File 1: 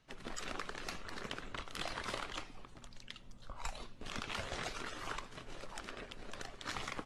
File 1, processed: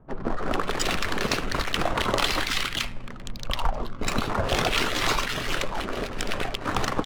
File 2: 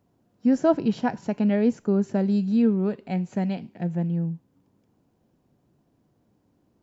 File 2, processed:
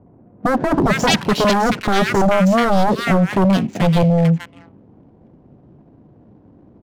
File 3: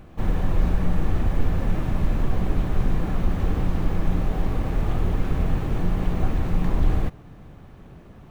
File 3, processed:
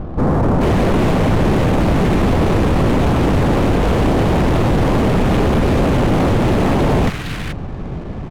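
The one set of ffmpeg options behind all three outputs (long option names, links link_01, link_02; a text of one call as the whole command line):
ffmpeg -i in.wav -filter_complex "[0:a]aeval=exprs='0.398*sin(PI/2*7.94*val(0)/0.398)':channel_layout=same,acrossover=split=1500[link_01][link_02];[link_02]adelay=430[link_03];[link_01][link_03]amix=inputs=2:normalize=0,adynamicsmooth=sensitivity=7.5:basefreq=840,volume=-2.5dB" out.wav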